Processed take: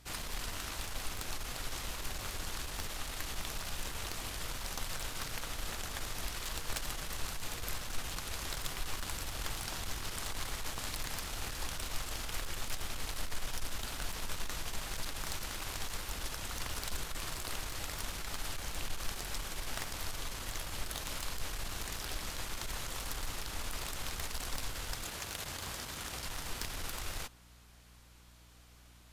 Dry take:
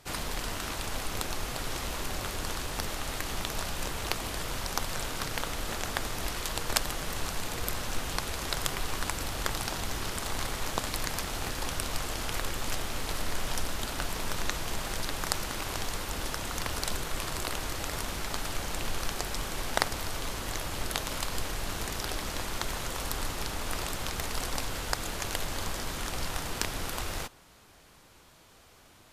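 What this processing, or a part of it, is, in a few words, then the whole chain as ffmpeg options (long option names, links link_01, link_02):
valve amplifier with mains hum: -filter_complex "[0:a]aeval=exprs='(tanh(17.8*val(0)+0.4)-tanh(0.4))/17.8':channel_layout=same,aeval=exprs='val(0)+0.00178*(sin(2*PI*60*n/s)+sin(2*PI*2*60*n/s)/2+sin(2*PI*3*60*n/s)/3+sin(2*PI*4*60*n/s)/4+sin(2*PI*5*60*n/s)/5)':channel_layout=same,asettb=1/sr,asplit=3[link_01][link_02][link_03];[link_01]atrim=end=25.054[link_04];[link_02]atrim=start=25.05:end=26.26,asetpts=PTS-STARTPTS,afade=type=in:duration=0.004:curve=qsin,afade=type=out:start_time=1.206:duration=0.004:curve=qsin,highpass=60[link_05];[link_03]atrim=start=26.256[link_06];[link_04][link_05]acrossfade=duration=0.004:curve1=hsin:curve2=qsin[link_07];[link_07][link_06]acrossfade=duration=0.004:curve1=qsin:curve2=hsin,equalizer=frequency=350:width=0.31:gain=-6,volume=-2dB"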